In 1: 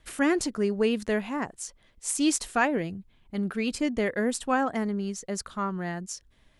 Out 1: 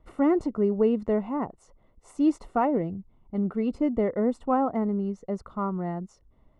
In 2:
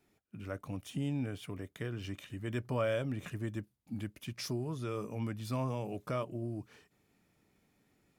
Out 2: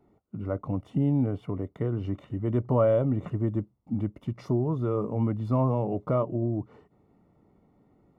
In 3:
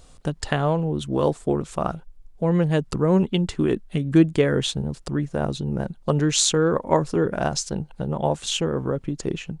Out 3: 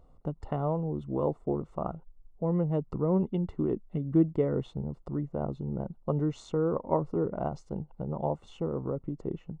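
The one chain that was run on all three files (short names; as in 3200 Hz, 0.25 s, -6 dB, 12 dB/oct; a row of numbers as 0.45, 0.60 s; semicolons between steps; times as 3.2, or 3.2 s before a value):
polynomial smoothing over 65 samples; normalise peaks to -12 dBFS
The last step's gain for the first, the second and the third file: +2.5, +10.5, -7.5 dB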